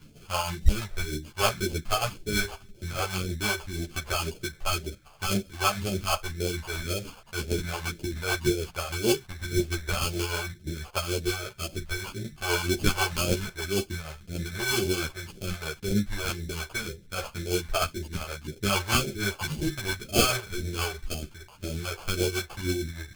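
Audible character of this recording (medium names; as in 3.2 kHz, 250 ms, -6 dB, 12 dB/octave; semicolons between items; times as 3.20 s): aliases and images of a low sample rate 1.9 kHz, jitter 0%; phasing stages 2, 1.9 Hz, lowest notch 240–1100 Hz; tremolo triangle 6.4 Hz, depth 60%; a shimmering, thickened sound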